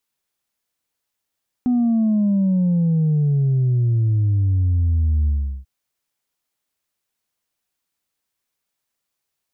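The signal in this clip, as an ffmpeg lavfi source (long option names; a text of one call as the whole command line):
ffmpeg -f lavfi -i "aevalsrc='0.178*clip((3.99-t)/0.38,0,1)*tanh(1.12*sin(2*PI*250*3.99/log(65/250)*(exp(log(65/250)*t/3.99)-1)))/tanh(1.12)':duration=3.99:sample_rate=44100" out.wav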